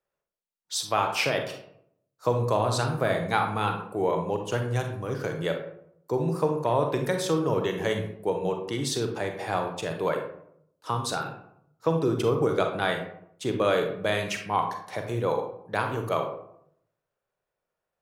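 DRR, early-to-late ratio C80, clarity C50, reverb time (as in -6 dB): 4.0 dB, 10.0 dB, 6.0 dB, 0.70 s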